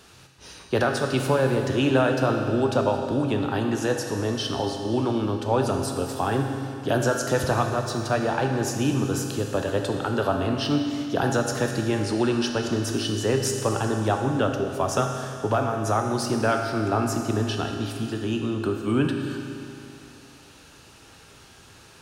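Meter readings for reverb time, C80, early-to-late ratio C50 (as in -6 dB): 2.7 s, 5.0 dB, 4.0 dB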